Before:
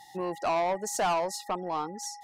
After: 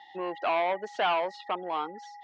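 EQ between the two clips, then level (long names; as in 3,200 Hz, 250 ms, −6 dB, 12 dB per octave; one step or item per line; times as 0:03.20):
loudspeaker in its box 310–3,500 Hz, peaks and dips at 1,500 Hz +4 dB, 2,200 Hz +4 dB, 3,200 Hz +9 dB
0.0 dB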